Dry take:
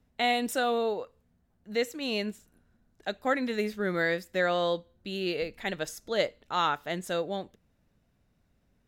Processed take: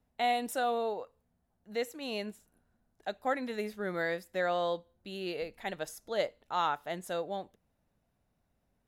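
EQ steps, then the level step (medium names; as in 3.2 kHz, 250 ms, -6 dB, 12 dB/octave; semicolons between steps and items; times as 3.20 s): peaking EQ 790 Hz +7 dB 1.1 oct; peaking EQ 11 kHz +7.5 dB 0.45 oct; -7.5 dB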